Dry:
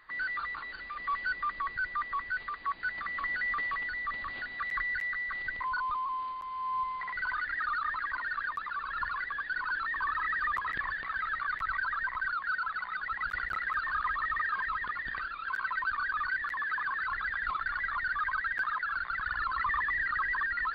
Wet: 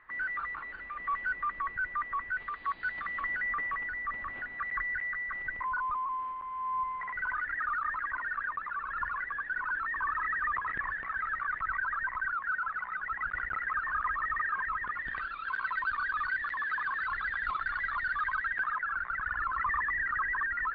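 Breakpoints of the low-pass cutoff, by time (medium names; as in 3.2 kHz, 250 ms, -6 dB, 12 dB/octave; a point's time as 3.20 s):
low-pass 24 dB/octave
2.32 s 2.5 kHz
2.73 s 4.1 kHz
3.52 s 2.3 kHz
14.84 s 2.3 kHz
15.33 s 4.1 kHz
18.20 s 4.1 kHz
18.88 s 2.3 kHz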